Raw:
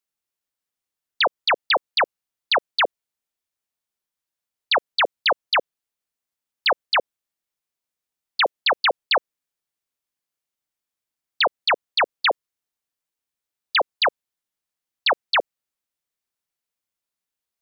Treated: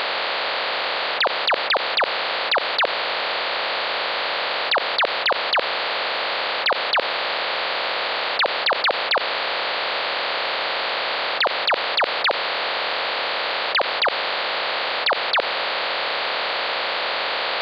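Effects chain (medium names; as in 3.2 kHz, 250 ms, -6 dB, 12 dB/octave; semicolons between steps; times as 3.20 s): spectral levelling over time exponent 0.2; in parallel at +2 dB: compressor with a negative ratio -21 dBFS, ratio -0.5; on the sum: trim -4.5 dB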